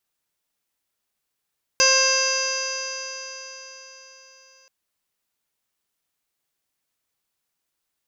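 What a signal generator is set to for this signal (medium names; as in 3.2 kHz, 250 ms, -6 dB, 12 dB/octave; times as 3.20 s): stretched partials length 2.88 s, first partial 528 Hz, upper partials -3/-2/-9.5/1/-12.5/-16.5/-16/4/-7/3.5/-7/-15.5 dB, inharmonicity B 0.00072, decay 4.33 s, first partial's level -22 dB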